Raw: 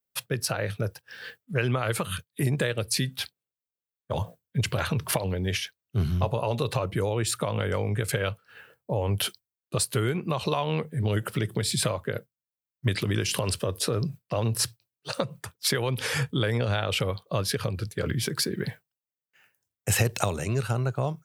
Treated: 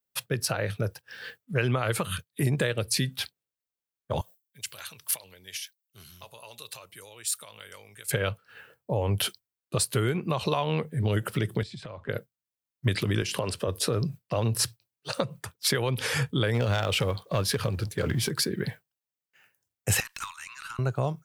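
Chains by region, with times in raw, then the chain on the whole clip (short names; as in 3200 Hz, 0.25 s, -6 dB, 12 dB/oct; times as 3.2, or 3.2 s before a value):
4.21–8.11 pre-emphasis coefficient 0.97 + notch 750 Hz, Q 23
11.63–12.09 compressor, threshold -36 dBFS + air absorption 140 m
13.22–13.68 HPF 400 Hz 6 dB/oct + tilt -2 dB/oct + upward compressor, threshold -34 dBFS
16.54–18.31 G.711 law mismatch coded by mu + overloaded stage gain 18 dB
20–20.79 steep high-pass 980 Hz 72 dB/oct + high shelf 4800 Hz -6 dB + tube stage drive 27 dB, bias 0.3
whole clip: dry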